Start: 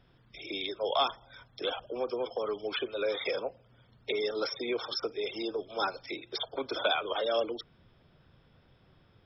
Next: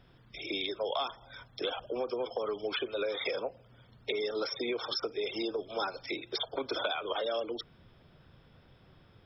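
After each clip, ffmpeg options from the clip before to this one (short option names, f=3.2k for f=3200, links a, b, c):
-af "acompressor=threshold=-33dB:ratio=6,volume=3dB"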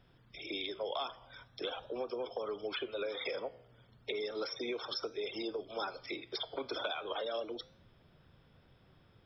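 -af "flanger=delay=9.2:depth=8.3:regen=-88:speed=0.38:shape=triangular"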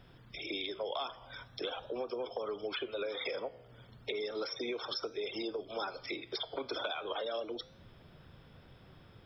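-af "acompressor=threshold=-53dB:ratio=1.5,volume=7dB"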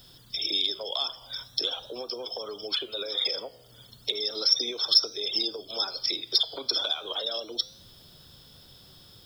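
-af "aexciter=amount=6.5:drive=8.9:freq=3.5k"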